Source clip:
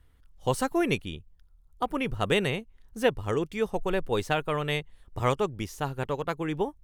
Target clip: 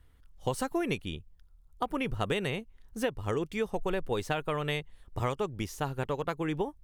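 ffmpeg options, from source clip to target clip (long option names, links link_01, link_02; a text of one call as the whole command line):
ffmpeg -i in.wav -af "acompressor=threshold=-26dB:ratio=10" out.wav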